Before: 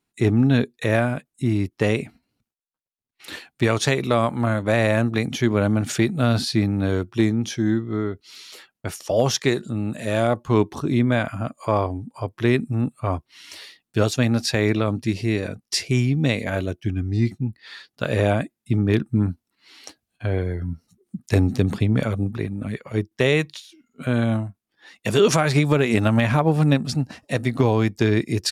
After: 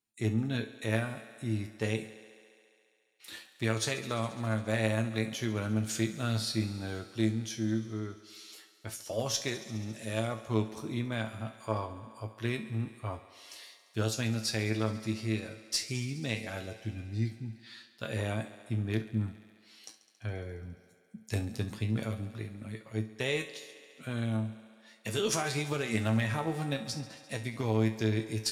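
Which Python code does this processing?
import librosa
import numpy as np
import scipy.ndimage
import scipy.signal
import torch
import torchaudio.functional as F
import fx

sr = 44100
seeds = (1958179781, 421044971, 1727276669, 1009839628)

p1 = fx.high_shelf(x, sr, hz=3200.0, db=9.5)
p2 = fx.comb_fb(p1, sr, f0_hz=110.0, decay_s=0.26, harmonics='all', damping=0.0, mix_pct=80)
p3 = fx.cheby_harmonics(p2, sr, harmonics=(2,), levels_db=(-17,), full_scale_db=-8.0)
p4 = p3 + fx.echo_thinned(p3, sr, ms=69, feedback_pct=84, hz=150.0, wet_db=-16.5, dry=0)
y = p4 * 10.0 ** (-7.0 / 20.0)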